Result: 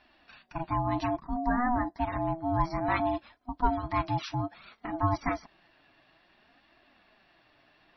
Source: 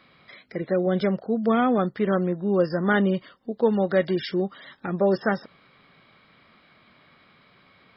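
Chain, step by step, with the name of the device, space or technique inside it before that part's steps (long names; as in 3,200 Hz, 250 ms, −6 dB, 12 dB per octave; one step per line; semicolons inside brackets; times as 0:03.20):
0:01.36–0:01.99: Chebyshev band-stop filter 1,600–3,900 Hz, order 5
alien voice (ring modulation 490 Hz; flanger 0.59 Hz, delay 2.8 ms, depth 4.6 ms, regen −25%)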